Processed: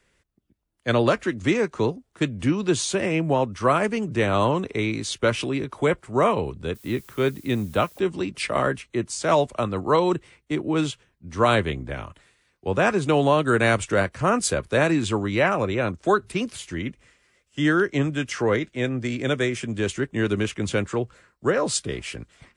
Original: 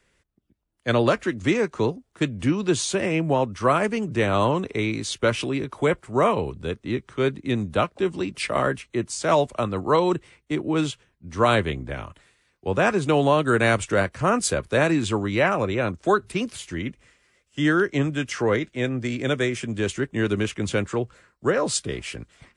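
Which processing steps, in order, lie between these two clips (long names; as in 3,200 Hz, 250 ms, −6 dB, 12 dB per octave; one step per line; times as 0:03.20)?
0:06.74–0:07.98: background noise blue −51 dBFS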